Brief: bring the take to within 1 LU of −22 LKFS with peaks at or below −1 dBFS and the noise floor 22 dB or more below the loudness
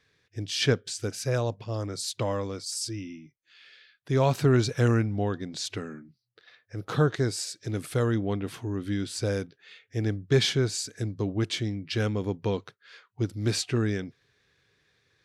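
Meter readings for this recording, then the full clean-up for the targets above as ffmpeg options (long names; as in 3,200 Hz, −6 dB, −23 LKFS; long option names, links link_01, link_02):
integrated loudness −28.5 LKFS; sample peak −10.5 dBFS; target loudness −22.0 LKFS
→ -af "volume=6.5dB"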